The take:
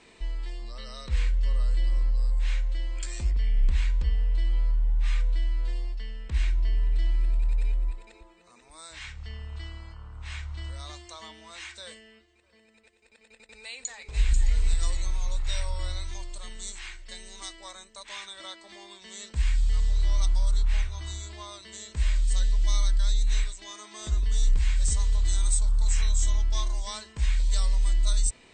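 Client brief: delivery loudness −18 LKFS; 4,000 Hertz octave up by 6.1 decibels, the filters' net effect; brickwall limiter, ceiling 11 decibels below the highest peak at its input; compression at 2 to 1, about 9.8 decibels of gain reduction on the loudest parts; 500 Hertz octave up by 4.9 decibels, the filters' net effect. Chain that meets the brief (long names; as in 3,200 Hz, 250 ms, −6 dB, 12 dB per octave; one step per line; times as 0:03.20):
parametric band 500 Hz +6 dB
parametric band 4,000 Hz +7 dB
downward compressor 2 to 1, threshold −36 dBFS
level +21.5 dB
brickwall limiter −7.5 dBFS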